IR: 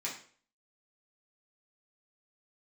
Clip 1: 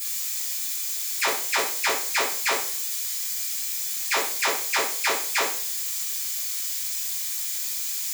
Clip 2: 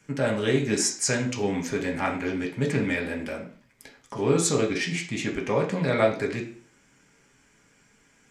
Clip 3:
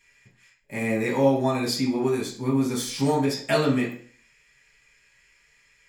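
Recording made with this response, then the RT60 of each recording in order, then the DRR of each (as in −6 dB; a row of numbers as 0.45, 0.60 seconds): 3; 0.45, 0.45, 0.45 seconds; −13.0, 0.0, −6.0 decibels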